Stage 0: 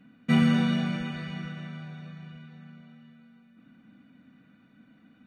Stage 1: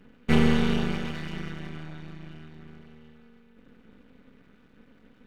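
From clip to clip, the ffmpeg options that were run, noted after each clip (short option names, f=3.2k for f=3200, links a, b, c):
-af "aeval=exprs='max(val(0),0)':c=same,volume=5dB"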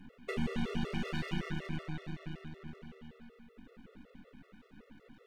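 -af "acompressor=threshold=-28dB:ratio=12,afftfilt=real='re*gt(sin(2*PI*5.3*pts/sr)*(1-2*mod(floor(b*sr/1024/360),2)),0)':imag='im*gt(sin(2*PI*5.3*pts/sr)*(1-2*mod(floor(b*sr/1024/360),2)),0)':win_size=1024:overlap=0.75,volume=2.5dB"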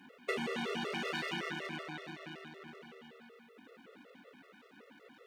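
-af "highpass=390,volume=5dB"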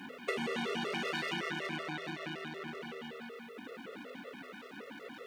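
-af "bandreject=f=83.94:t=h:w=4,bandreject=f=167.88:t=h:w=4,bandreject=f=251.82:t=h:w=4,acompressor=threshold=-52dB:ratio=2,volume=11dB"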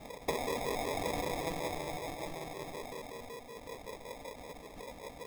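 -af "highpass=f=410:w=0.5412,highpass=f=410:w=1.3066,equalizer=f=570:t=q:w=4:g=5,equalizer=f=810:t=q:w=4:g=4,equalizer=f=1.3k:t=q:w=4:g=-4,lowpass=f=2.6k:w=0.5412,lowpass=f=2.6k:w=1.3066,acrusher=samples=30:mix=1:aa=0.000001,volume=2.5dB"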